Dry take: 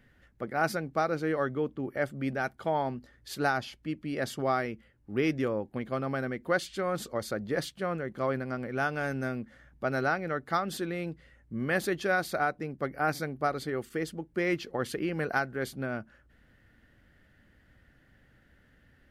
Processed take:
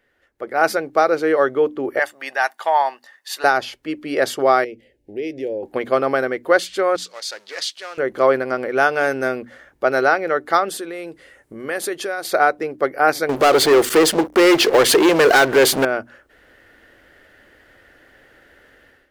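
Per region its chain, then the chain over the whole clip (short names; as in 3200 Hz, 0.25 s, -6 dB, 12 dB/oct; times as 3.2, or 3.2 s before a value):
1.99–3.44 HPF 880 Hz + comb 1.1 ms, depth 48%
4.64–5.63 high shelf 3400 Hz -7.5 dB + compressor 2.5:1, threshold -40 dBFS + Butterworth band-stop 1200 Hz, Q 0.75
6.96–7.98 G.711 law mismatch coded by mu + band-pass 4800 Hz, Q 1.3 + Doppler distortion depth 0.17 ms
10.69–12.25 bell 9400 Hz +8.5 dB 0.85 oct + compressor 3:1, threshold -39 dBFS
13.29–15.85 compressor 1.5:1, threshold -43 dBFS + sample leveller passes 5
whole clip: resonant low shelf 270 Hz -12.5 dB, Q 1.5; notches 60/120/180/240/300 Hz; AGC gain up to 15 dB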